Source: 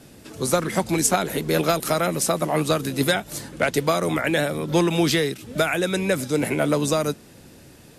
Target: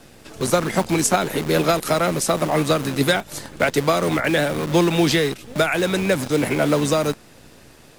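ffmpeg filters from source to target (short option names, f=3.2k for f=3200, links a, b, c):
-filter_complex "[0:a]acrossover=split=540[a][b];[a]acrusher=bits=6:dc=4:mix=0:aa=0.000001[c];[b]highshelf=f=9.4k:g=-7[d];[c][d]amix=inputs=2:normalize=0,volume=2.5dB"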